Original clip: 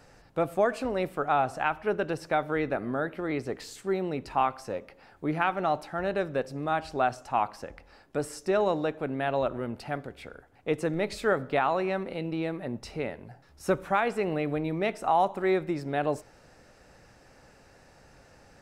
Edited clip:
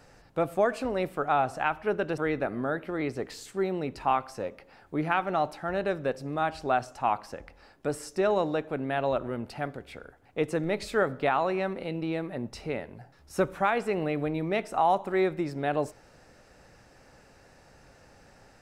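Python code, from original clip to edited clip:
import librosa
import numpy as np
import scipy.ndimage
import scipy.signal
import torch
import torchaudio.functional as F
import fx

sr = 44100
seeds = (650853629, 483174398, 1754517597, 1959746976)

y = fx.edit(x, sr, fx.cut(start_s=2.18, length_s=0.3), tone=tone)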